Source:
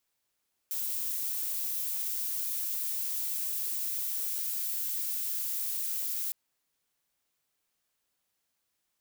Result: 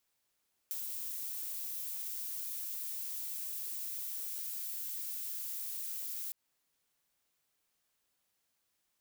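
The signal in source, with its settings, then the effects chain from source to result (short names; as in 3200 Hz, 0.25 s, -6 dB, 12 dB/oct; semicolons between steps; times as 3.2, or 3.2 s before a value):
noise violet, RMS -33 dBFS 5.61 s
compressor, threshold -37 dBFS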